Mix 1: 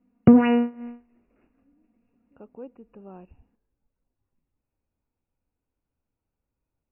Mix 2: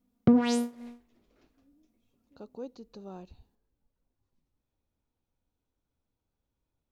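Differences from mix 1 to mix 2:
background -7.5 dB; master: remove brick-wall FIR low-pass 2.9 kHz

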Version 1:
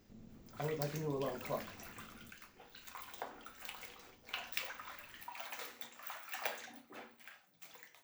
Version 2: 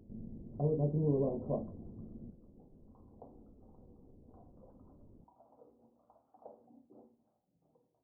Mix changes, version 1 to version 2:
speech +10.5 dB; master: add Gaussian low-pass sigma 15 samples

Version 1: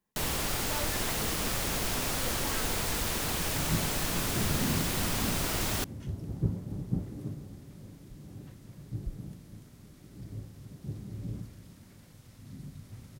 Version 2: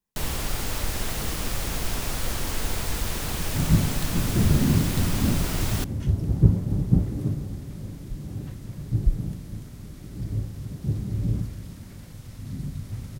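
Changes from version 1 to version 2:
speech -7.5 dB; second sound +8.5 dB; master: add bass shelf 94 Hz +10.5 dB

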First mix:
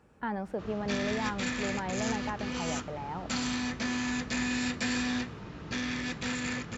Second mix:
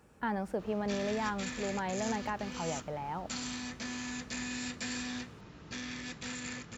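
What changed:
background -8.5 dB; master: remove low-pass 3.6 kHz 6 dB/octave

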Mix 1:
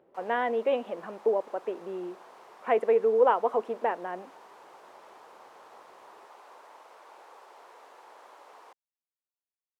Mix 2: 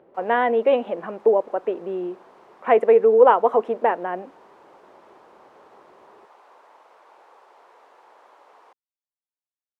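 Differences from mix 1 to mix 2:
speech +8.5 dB; master: add treble shelf 4.6 kHz -9 dB

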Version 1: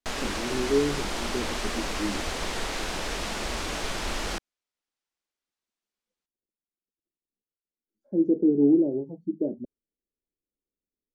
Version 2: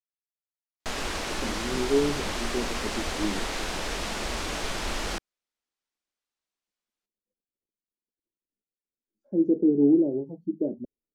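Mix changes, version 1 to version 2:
speech: entry +1.20 s; background: entry +0.80 s

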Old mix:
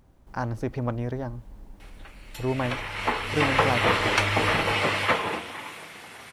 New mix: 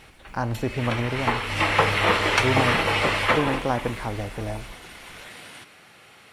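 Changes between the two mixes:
background: entry -1.80 s; reverb: on, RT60 0.45 s

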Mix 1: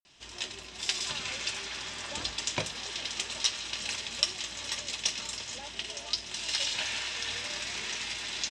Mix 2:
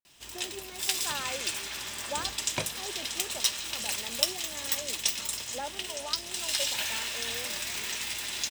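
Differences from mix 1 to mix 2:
speech +11.0 dB; master: remove low-pass 6.7 kHz 24 dB/octave

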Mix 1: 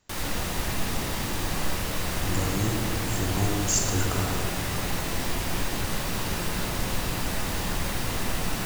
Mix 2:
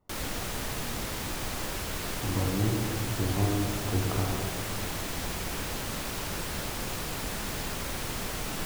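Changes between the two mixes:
speech: add Savitzky-Golay filter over 65 samples; background: send off

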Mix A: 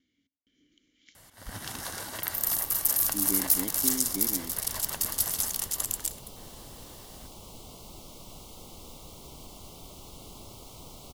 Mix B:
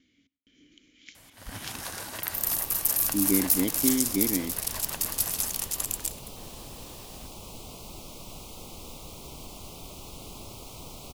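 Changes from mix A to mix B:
speech +8.5 dB; second sound +3.5 dB; master: remove band-stop 2.5 kHz, Q 8.2

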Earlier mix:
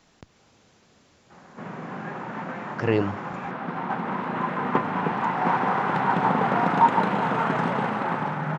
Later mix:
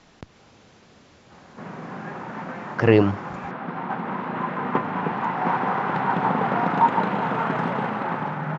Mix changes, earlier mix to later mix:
speech +7.0 dB; master: add distance through air 72 m

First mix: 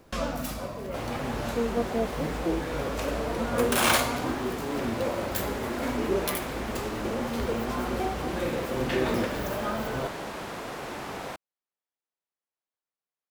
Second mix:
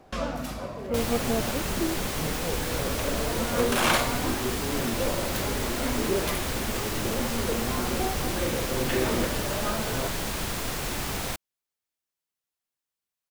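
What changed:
speech: entry -0.65 s; second sound: remove band-pass filter 670 Hz, Q 0.57; master: add treble shelf 10 kHz -9.5 dB

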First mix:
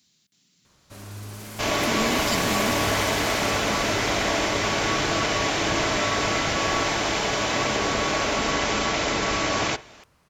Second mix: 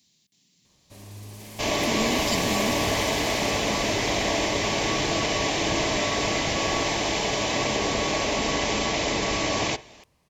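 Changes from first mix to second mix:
first sound -3.5 dB; master: add peaking EQ 1.4 kHz -14.5 dB 0.35 oct

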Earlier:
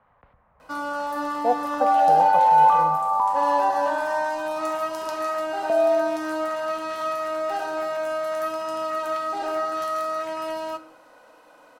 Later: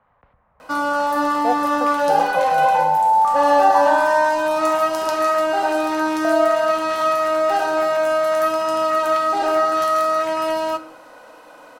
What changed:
first sound +8.5 dB; second sound: entry +0.55 s

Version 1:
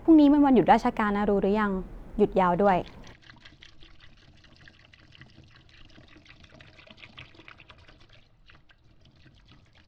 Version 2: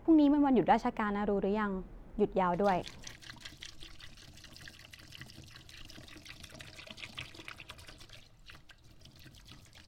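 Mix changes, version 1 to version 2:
speech -7.5 dB; background: remove Gaussian low-pass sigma 1.9 samples

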